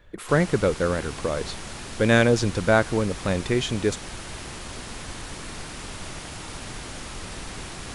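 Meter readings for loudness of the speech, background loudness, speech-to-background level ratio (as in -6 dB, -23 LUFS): -23.5 LUFS, -36.0 LUFS, 12.5 dB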